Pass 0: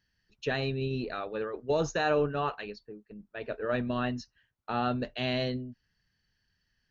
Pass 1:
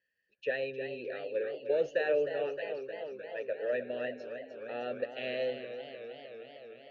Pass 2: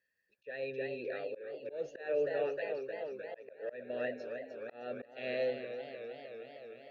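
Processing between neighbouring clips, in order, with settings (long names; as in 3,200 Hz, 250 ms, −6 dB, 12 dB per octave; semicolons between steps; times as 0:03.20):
formant filter e; feedback echo with a swinging delay time 307 ms, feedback 75%, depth 96 cents, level −10 dB; level +6.5 dB
notch filter 3,000 Hz, Q 7.3; volume swells 297 ms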